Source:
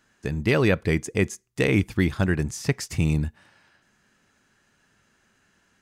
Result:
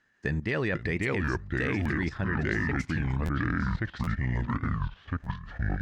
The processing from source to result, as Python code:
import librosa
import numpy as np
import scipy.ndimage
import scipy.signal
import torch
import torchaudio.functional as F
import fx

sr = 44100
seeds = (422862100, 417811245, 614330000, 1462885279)

y = fx.lowpass(x, sr, hz=fx.steps((0.0, 5300.0), (2.1, 3000.0), (3.11, 5300.0)), slope=12)
y = fx.echo_pitch(y, sr, ms=428, semitones=-4, count=3, db_per_echo=-3.0)
y = fx.peak_eq(y, sr, hz=1800.0, db=11.5, octaves=0.26)
y = fx.level_steps(y, sr, step_db=14)
y = fx.buffer_glitch(y, sr, at_s=(1.26, 1.82, 3.25, 4.03, 5.23), block=512, repeats=2)
y = fx.record_warp(y, sr, rpm=33.33, depth_cents=250.0)